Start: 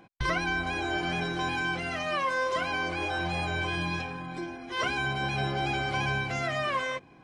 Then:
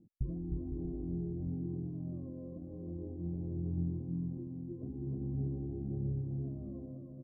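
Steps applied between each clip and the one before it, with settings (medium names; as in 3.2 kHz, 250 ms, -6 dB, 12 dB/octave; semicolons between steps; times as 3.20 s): inverse Chebyshev low-pass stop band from 1.8 kHz, stop band 80 dB; on a send: bouncing-ball echo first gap 310 ms, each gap 0.65×, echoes 5; on the sum: trim -2.5 dB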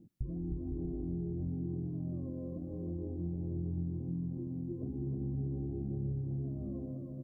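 compression 3:1, threshold -40 dBFS, peak gain reduction 8.5 dB; on a send at -23 dB: reverberation RT60 1.6 s, pre-delay 6 ms; on the sum: trim +5 dB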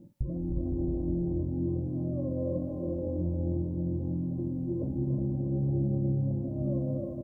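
band-stop 420 Hz, Q 12; small resonant body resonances 570/890 Hz, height 17 dB, ringing for 70 ms; on a send: multi-tap echo 50/284/363 ms -10.5/-8.5/-6 dB; on the sum: trim +5.5 dB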